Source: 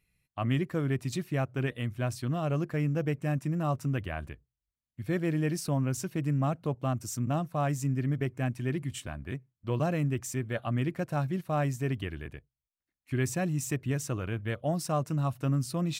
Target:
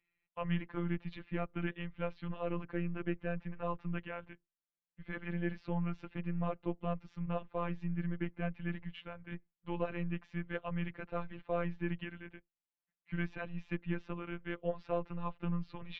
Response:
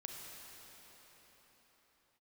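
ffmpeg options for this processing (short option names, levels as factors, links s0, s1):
-af "highpass=f=160:t=q:w=0.5412,highpass=f=160:t=q:w=1.307,lowpass=f=3400:t=q:w=0.5176,lowpass=f=3400:t=q:w=0.7071,lowpass=f=3400:t=q:w=1.932,afreqshift=-99,afftfilt=real='hypot(re,im)*cos(PI*b)':imag='0':win_size=1024:overlap=0.75,volume=0.891"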